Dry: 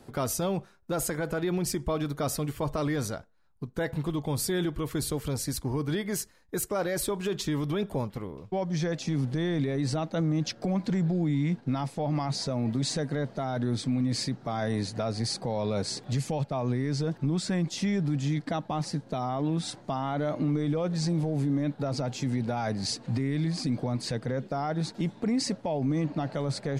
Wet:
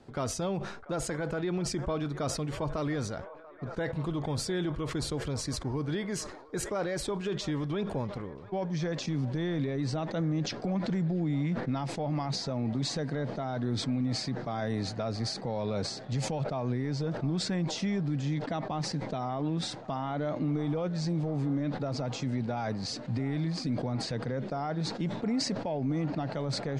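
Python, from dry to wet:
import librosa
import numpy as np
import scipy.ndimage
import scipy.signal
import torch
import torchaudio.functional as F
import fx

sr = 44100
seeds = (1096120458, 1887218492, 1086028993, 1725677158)

y = scipy.signal.sosfilt(scipy.signal.bessel(4, 5600.0, 'lowpass', norm='mag', fs=sr, output='sos'), x)
y = fx.echo_wet_bandpass(y, sr, ms=689, feedback_pct=76, hz=1000.0, wet_db=-16.5)
y = fx.sustainer(y, sr, db_per_s=66.0)
y = F.gain(torch.from_numpy(y), -3.0).numpy()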